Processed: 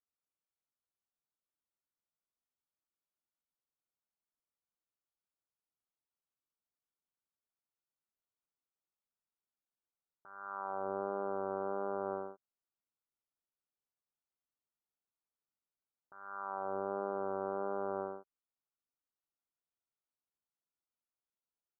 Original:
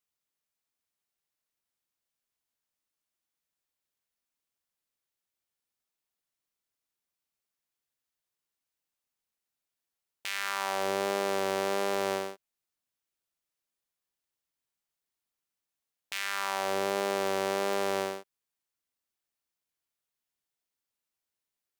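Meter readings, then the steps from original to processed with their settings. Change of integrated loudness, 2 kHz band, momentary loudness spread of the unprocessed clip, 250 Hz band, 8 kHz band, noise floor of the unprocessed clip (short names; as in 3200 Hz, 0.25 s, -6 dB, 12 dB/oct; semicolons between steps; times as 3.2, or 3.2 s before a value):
-8.0 dB, -17.5 dB, 7 LU, -6.5 dB, under -35 dB, under -85 dBFS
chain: Chebyshev low-pass 1500 Hz, order 8; gain -6.5 dB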